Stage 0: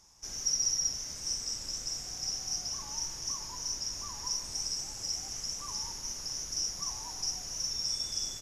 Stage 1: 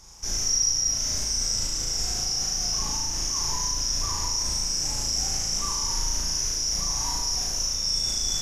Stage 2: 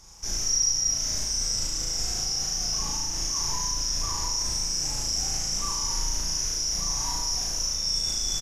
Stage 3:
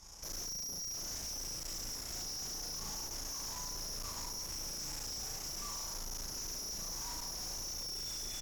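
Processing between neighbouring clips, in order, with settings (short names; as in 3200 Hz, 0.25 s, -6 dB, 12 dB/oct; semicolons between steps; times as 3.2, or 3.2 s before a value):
low shelf 64 Hz +10.5 dB; in parallel at +2.5 dB: negative-ratio compressor -39 dBFS, ratio -1; on the sum: flutter echo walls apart 6.2 m, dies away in 0.88 s
doubler 30 ms -12 dB; gain -1.5 dB
limiter -21 dBFS, peak gain reduction 7.5 dB; tube stage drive 41 dB, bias 0.8; gain +1 dB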